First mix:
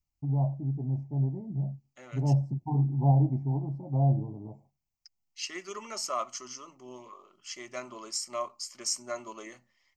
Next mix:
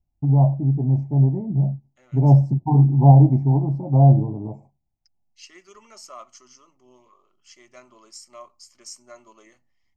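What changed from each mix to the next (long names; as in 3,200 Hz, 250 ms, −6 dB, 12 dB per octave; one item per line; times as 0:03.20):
first voice +11.5 dB
second voice −8.5 dB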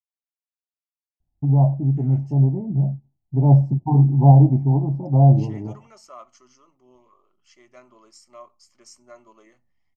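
first voice: entry +1.20 s
master: add high-shelf EQ 2,800 Hz −10 dB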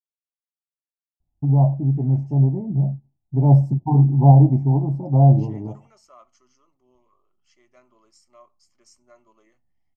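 first voice: remove high-frequency loss of the air 120 metres
second voice −7.5 dB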